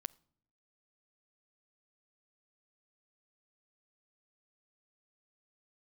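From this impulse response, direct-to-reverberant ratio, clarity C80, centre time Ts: 17.0 dB, 27.5 dB, 2 ms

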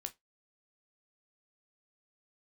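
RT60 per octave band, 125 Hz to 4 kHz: 0.15 s, 0.15 s, 0.20 s, 0.15 s, 0.15 s, 0.15 s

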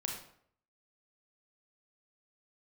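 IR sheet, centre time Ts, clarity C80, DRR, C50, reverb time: 35 ms, 7.5 dB, 0.0 dB, 4.0 dB, 0.65 s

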